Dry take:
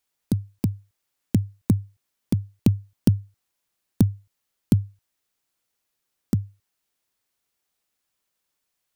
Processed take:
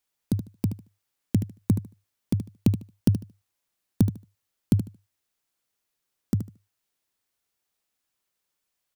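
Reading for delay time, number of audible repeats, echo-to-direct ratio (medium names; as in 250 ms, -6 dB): 75 ms, 2, -10.5 dB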